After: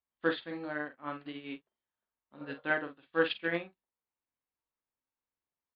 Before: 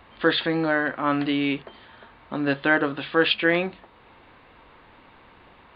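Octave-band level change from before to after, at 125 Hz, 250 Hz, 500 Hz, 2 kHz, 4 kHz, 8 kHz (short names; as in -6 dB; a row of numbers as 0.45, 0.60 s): -15.0 dB, -14.5 dB, -10.5 dB, -11.5 dB, -15.5 dB, n/a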